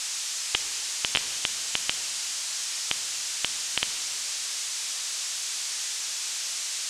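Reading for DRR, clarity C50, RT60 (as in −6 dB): 10.0 dB, 10.5 dB, 2.6 s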